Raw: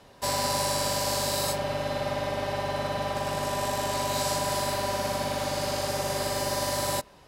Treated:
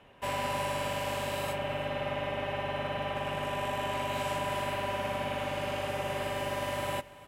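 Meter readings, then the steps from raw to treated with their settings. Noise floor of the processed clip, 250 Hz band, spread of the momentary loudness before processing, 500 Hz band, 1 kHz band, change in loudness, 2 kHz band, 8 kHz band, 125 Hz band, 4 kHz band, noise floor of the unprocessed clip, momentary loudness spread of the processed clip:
-51 dBFS, -4.5 dB, 4 LU, -4.0 dB, -4.0 dB, -5.0 dB, -1.0 dB, -15.0 dB, -4.0 dB, -7.5 dB, -54 dBFS, 2 LU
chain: resonant high shelf 3600 Hz -8.5 dB, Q 3; echo 0.335 s -18.5 dB; gain -4.5 dB

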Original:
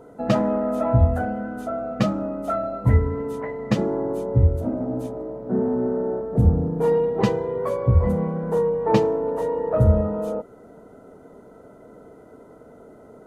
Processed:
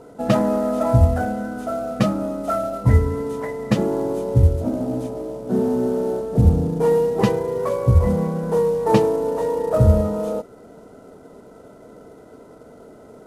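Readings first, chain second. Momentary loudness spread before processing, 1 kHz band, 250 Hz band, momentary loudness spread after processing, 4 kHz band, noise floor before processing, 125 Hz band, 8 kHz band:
10 LU, +2.5 dB, +2.5 dB, 10 LU, +3.0 dB, -47 dBFS, +2.5 dB, n/a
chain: CVSD 64 kbps; gain +2.5 dB

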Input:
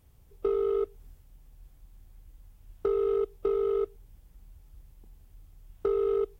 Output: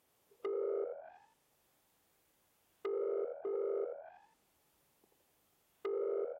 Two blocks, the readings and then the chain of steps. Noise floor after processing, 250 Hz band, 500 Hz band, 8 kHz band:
-76 dBFS, -9.0 dB, -10.0 dB, n/a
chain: hard clip -28.5 dBFS, distortion -10 dB; HPF 390 Hz 12 dB/oct; frequency-shifting echo 82 ms, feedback 49%, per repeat +81 Hz, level -5 dB; treble ducked by the level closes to 630 Hz, closed at -33.5 dBFS; gain -3.5 dB

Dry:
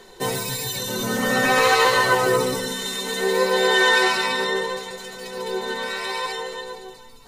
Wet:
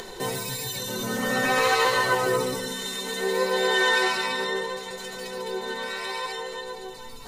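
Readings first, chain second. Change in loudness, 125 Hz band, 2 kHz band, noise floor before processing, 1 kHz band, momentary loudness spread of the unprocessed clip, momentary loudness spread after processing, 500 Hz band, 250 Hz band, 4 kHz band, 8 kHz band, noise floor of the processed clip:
-5.0 dB, -4.5 dB, -4.5 dB, -45 dBFS, -4.5 dB, 16 LU, 14 LU, -4.5 dB, -4.5 dB, -4.5 dB, -4.0 dB, -39 dBFS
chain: upward compressor, threshold -24 dBFS; gain -4.5 dB

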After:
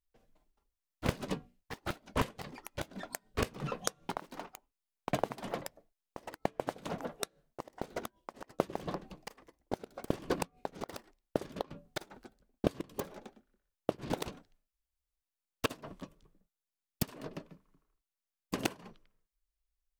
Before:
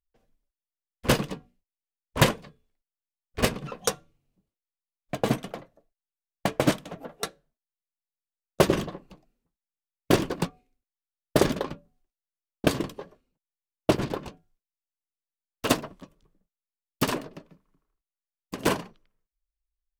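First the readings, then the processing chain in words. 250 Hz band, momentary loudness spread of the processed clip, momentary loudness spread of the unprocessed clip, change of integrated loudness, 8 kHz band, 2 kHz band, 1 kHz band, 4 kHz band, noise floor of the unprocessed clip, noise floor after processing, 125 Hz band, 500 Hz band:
-10.5 dB, 15 LU, 18 LU, -12.0 dB, -10.0 dB, -10.5 dB, -7.5 dB, -11.5 dB, under -85 dBFS, under -85 dBFS, -10.5 dB, -9.5 dB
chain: flipped gate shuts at -16 dBFS, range -24 dB; echoes that change speed 0.246 s, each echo +5 st, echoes 2, each echo -6 dB

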